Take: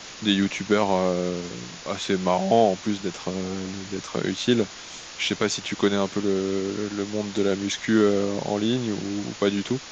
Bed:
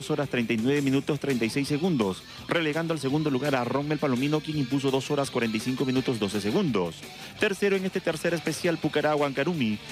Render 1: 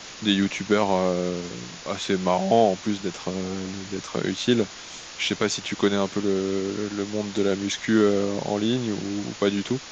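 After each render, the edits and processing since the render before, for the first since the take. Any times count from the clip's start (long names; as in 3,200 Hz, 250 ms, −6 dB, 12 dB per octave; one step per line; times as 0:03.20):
no processing that can be heard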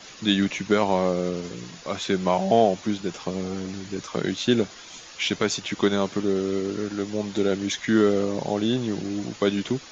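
broadband denoise 8 dB, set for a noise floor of −41 dBFS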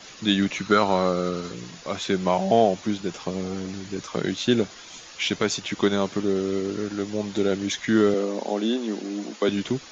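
0:00.56–0:01.52: hollow resonant body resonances 1,300/4,000 Hz, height 13 dB, ringing for 20 ms
0:08.14–0:09.49: elliptic high-pass filter 210 Hz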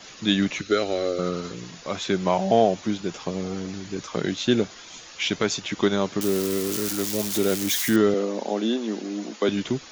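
0:00.61–0:01.19: phaser with its sweep stopped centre 400 Hz, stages 4
0:06.21–0:07.96: spike at every zero crossing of −18.5 dBFS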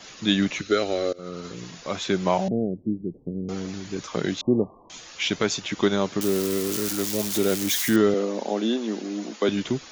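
0:01.13–0:01.63: fade in linear, from −22.5 dB
0:02.48–0:03.49: inverse Chebyshev low-pass filter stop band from 1,300 Hz, stop band 60 dB
0:04.41–0:04.90: linear-phase brick-wall low-pass 1,200 Hz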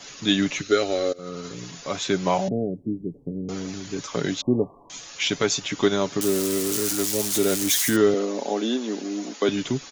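parametric band 8,800 Hz +6 dB 1.2 octaves
comb filter 7.1 ms, depth 36%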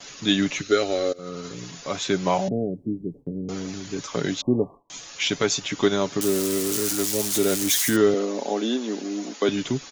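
noise gate with hold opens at −39 dBFS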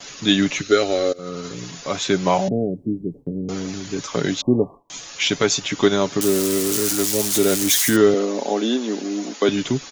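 level +4 dB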